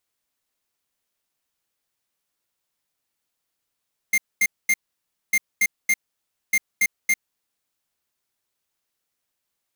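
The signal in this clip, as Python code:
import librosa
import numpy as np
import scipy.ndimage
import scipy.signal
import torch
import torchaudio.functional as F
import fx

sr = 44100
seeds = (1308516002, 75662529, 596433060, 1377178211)

y = fx.beep_pattern(sr, wave='square', hz=2110.0, on_s=0.05, off_s=0.23, beeps=3, pause_s=0.59, groups=3, level_db=-18.0)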